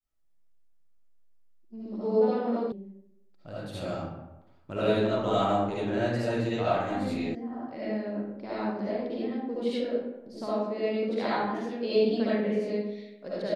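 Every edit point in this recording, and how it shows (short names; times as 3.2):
2.72 sound cut off
7.35 sound cut off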